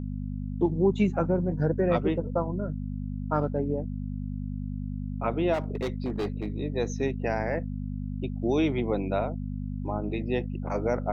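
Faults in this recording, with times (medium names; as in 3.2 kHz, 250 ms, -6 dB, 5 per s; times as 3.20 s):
hum 50 Hz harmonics 5 -33 dBFS
5.53–6.50 s: clipped -25 dBFS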